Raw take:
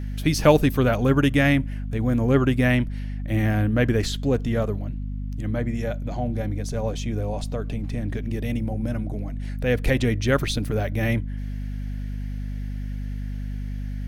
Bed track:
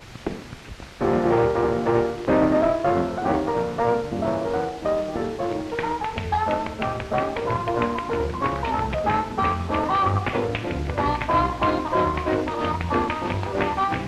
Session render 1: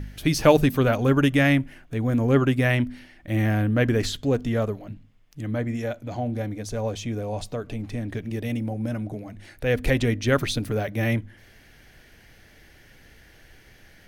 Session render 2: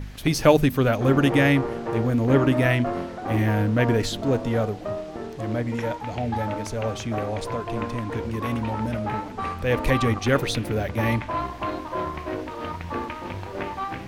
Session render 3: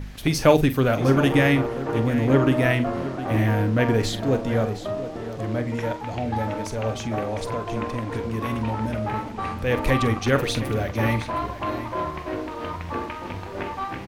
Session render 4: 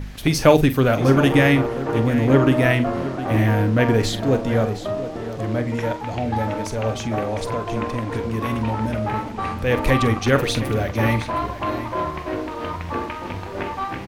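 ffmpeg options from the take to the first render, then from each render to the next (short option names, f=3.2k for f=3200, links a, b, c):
-af "bandreject=f=50:t=h:w=4,bandreject=f=100:t=h:w=4,bandreject=f=150:t=h:w=4,bandreject=f=200:t=h:w=4,bandreject=f=250:t=h:w=4"
-filter_complex "[1:a]volume=-7.5dB[a];[0:a][a]amix=inputs=2:normalize=0"
-filter_complex "[0:a]asplit=2[a][b];[b]adelay=45,volume=-12dB[c];[a][c]amix=inputs=2:normalize=0,aecho=1:1:714:0.211"
-af "volume=3dB,alimiter=limit=-1dB:level=0:latency=1"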